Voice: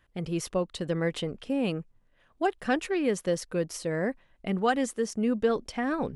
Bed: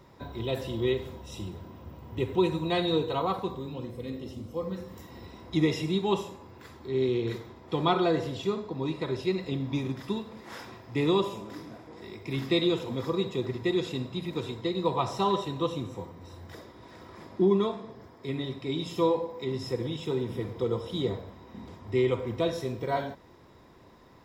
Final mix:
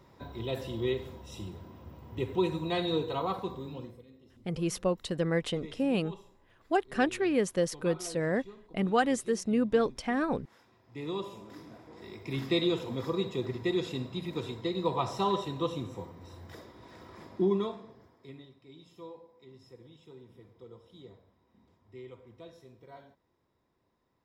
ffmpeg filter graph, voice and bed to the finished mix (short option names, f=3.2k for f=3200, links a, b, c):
-filter_complex "[0:a]adelay=4300,volume=-0.5dB[a];[1:a]volume=14dB,afade=t=out:st=3.76:d=0.29:silence=0.149624,afade=t=in:st=10.71:d=1.48:silence=0.133352,afade=t=out:st=17.24:d=1.26:silence=0.112202[b];[a][b]amix=inputs=2:normalize=0"